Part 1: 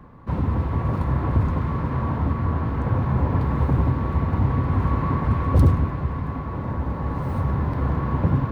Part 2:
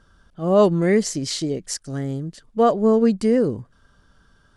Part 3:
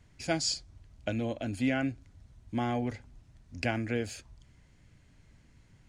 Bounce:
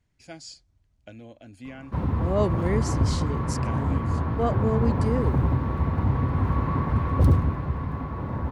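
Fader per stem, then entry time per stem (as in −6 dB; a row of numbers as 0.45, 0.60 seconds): −2.5, −9.5, −12.0 decibels; 1.65, 1.80, 0.00 seconds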